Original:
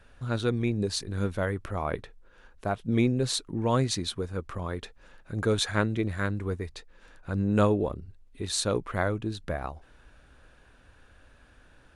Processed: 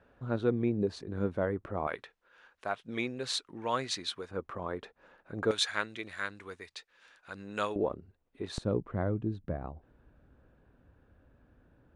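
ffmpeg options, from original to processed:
-af "asetnsamples=n=441:p=0,asendcmd='1.87 bandpass f 2000;4.31 bandpass f 690;5.51 bandpass f 3200;7.76 bandpass f 660;8.58 bandpass f 180',bandpass=f=410:t=q:w=0.54:csg=0"

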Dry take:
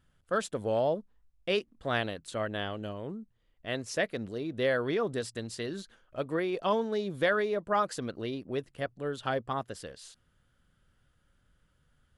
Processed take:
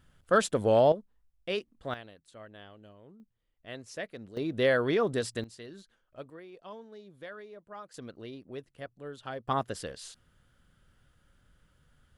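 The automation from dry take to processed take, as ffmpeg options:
-af "asetnsamples=n=441:p=0,asendcmd='0.92 volume volume -3.5dB;1.94 volume volume -15.5dB;3.2 volume volume -8.5dB;4.37 volume volume 3dB;5.44 volume volume -10dB;6.3 volume volume -17.5dB;7.94 volume volume -8dB;9.48 volume volume 4dB',volume=6dB"

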